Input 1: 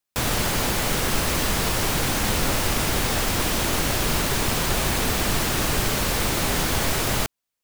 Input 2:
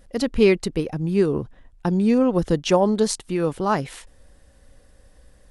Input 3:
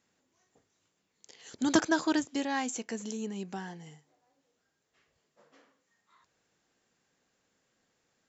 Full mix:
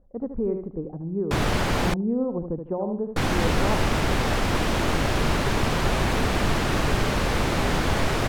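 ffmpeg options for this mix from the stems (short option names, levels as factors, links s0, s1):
-filter_complex "[0:a]adelay=1150,volume=1.12,asplit=3[s0][s1][s2];[s0]atrim=end=1.94,asetpts=PTS-STARTPTS,afade=t=out:st=1.936:d=0.004:c=hsin[s3];[s1]atrim=start=1.94:end=3.16,asetpts=PTS-STARTPTS,volume=0[s4];[s2]atrim=start=3.16,asetpts=PTS-STARTPTS,afade=t=in:d=0.004:c=hsin[s5];[s3][s4][s5]concat=n=3:v=0:a=1[s6];[1:a]lowpass=f=1000:w=0.5412,lowpass=f=1000:w=1.3066,volume=0.398,asplit=2[s7][s8];[s8]volume=0.355[s9];[s7]alimiter=limit=0.112:level=0:latency=1:release=247,volume=1[s10];[s9]aecho=0:1:75|150|225|300:1|0.27|0.0729|0.0197[s11];[s6][s10][s11]amix=inputs=3:normalize=0,aemphasis=mode=reproduction:type=75fm"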